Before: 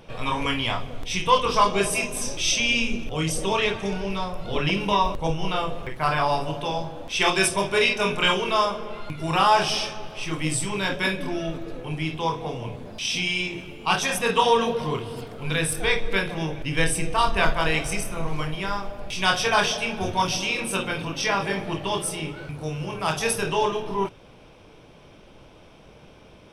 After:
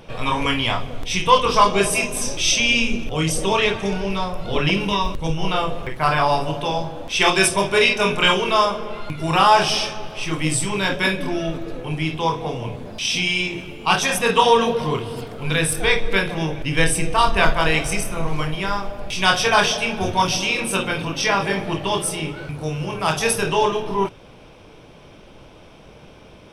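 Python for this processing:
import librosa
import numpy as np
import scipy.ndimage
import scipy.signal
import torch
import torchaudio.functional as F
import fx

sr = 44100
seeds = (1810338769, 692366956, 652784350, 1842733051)

y = fx.peak_eq(x, sr, hz=720.0, db=-9.5, octaves=1.3, at=(4.88, 5.37))
y = y * 10.0 ** (4.5 / 20.0)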